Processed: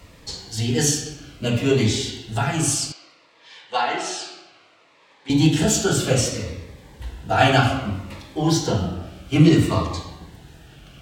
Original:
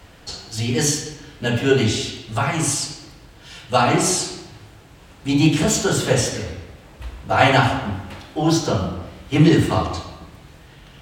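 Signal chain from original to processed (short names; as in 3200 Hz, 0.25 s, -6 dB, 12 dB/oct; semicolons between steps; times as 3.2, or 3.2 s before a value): 2.92–5.3 BPF 640–3800 Hz; cascading phaser falling 0.62 Hz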